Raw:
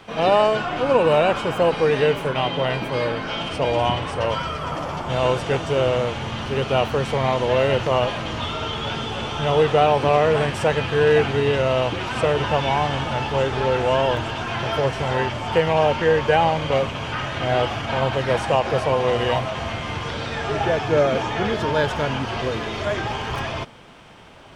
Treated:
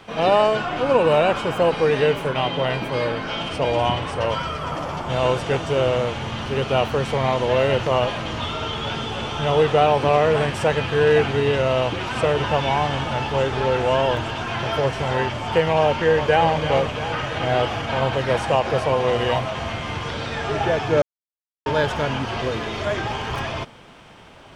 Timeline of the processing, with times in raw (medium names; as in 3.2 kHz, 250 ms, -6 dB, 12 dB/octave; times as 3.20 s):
15.83–16.47 s: echo throw 340 ms, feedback 70%, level -10.5 dB
21.02–21.66 s: mute